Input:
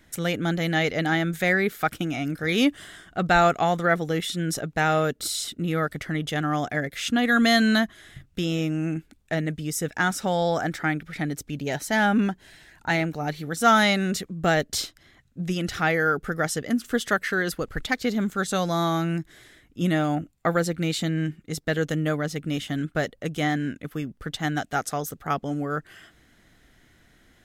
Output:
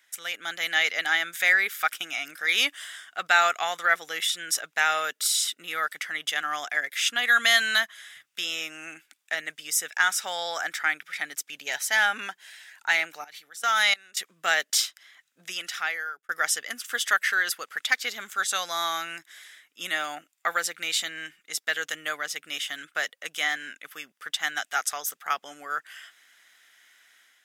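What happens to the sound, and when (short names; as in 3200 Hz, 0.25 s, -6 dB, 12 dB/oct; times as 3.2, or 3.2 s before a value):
13.24–14.17 level quantiser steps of 22 dB
15.42–16.29 fade out
whole clip: HPF 1500 Hz 12 dB/oct; notch 4200 Hz, Q 12; AGC gain up to 6.5 dB; gain -1 dB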